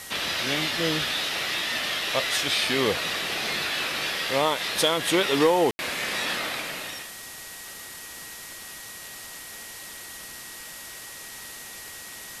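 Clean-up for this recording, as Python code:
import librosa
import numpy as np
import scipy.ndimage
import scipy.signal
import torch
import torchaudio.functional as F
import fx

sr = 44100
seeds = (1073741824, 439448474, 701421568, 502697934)

y = fx.fix_declip(x, sr, threshold_db=-11.5)
y = fx.notch(y, sr, hz=1900.0, q=30.0)
y = fx.fix_ambience(y, sr, seeds[0], print_start_s=10.82, print_end_s=11.32, start_s=5.71, end_s=5.79)
y = fx.noise_reduce(y, sr, print_start_s=10.82, print_end_s=11.32, reduce_db=30.0)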